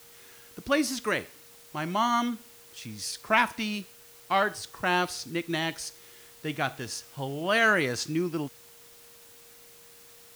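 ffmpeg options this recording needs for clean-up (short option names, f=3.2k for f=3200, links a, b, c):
-af "bandreject=f=470:w=30,afwtdn=0.0022"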